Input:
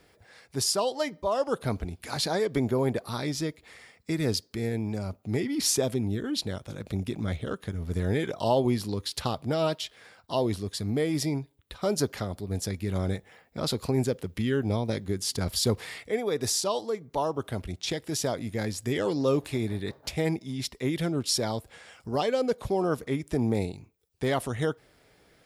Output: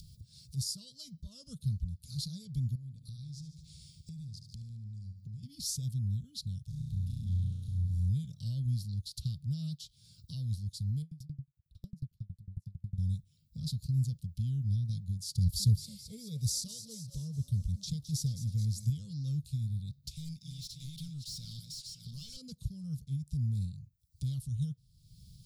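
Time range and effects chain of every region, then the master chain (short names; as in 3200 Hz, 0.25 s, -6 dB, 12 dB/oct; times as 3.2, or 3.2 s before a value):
2.75–5.43 bell 12000 Hz -13.5 dB 0.23 oct + compressor 3:1, threshold -42 dBFS + feedback echo 74 ms, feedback 58%, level -11 dB
6.69–8.09 flutter echo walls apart 5.7 m, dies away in 1.2 s + tube stage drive 25 dB, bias 0.4
11.02–12.98 bell 6400 Hz -14.5 dB 2.9 oct + dB-ramp tremolo decaying 11 Hz, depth 36 dB
15.37–18.9 tone controls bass +5 dB, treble +4 dB + small resonant body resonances 440/2100 Hz, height 11 dB, ringing for 30 ms + frequency-shifting echo 0.214 s, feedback 55%, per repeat +100 Hz, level -11.5 dB
20.11–22.37 regenerating reverse delay 0.286 s, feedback 46%, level -10.5 dB + passive tone stack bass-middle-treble 5-5-5 + overdrive pedal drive 28 dB, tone 2900 Hz, clips at -20.5 dBFS
whole clip: elliptic band-stop 150–4200 Hz, stop band 40 dB; tilt shelf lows +5.5 dB; upward compressor, threshold -35 dBFS; gain -4.5 dB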